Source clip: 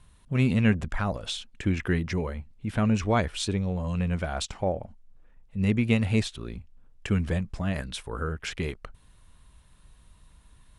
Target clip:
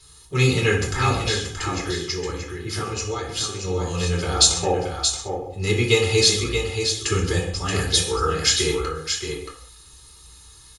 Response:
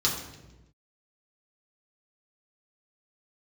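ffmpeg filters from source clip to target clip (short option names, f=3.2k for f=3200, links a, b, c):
-filter_complex "[0:a]bass=f=250:g=-9,treble=f=4k:g=15,aecho=1:1:2.4:0.71,asettb=1/sr,asplit=3[a][b][c];[a]atrim=end=1.264[d];[b]atrim=start=1.26:end=3.64,asetpts=PTS-STARTPTS,afade=t=in:d=0.004:c=qsin,afade=t=out:st=2.376:d=0.004:c=qsin,acompressor=threshold=-33dB:ratio=6[e];[c]atrim=start=3.636[f];[d][e]acrossfade=d=0.004:c1=hsin:c2=qsin[g];[g][f]acrossfade=d=0.004:c1=qsin:c2=hsin,aecho=1:1:627:0.473[h];[1:a]atrim=start_sample=2205,afade=t=out:st=0.26:d=0.01,atrim=end_sample=11907[i];[h][i]afir=irnorm=-1:irlink=0,volume=-3.5dB"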